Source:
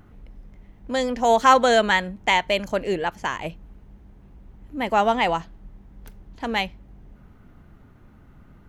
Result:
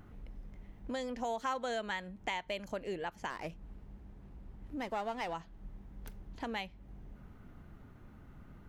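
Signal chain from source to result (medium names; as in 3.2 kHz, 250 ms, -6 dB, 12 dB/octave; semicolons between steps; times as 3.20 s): compression 3:1, threshold -35 dBFS, peak gain reduction 18 dB; 3.30–5.34 s: sliding maximum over 5 samples; trim -4 dB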